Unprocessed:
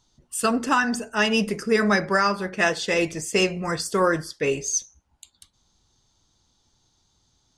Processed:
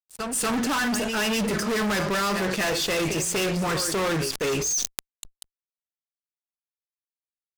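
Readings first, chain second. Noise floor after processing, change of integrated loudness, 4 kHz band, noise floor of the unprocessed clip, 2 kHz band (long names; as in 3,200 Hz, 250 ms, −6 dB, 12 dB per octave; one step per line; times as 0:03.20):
below −85 dBFS, −1.5 dB, +1.5 dB, −68 dBFS, −3.5 dB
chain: echo ahead of the sound 243 ms −17 dB
fuzz pedal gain 34 dB, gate −42 dBFS
level that may fall only so fast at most 32 dB per second
level −10 dB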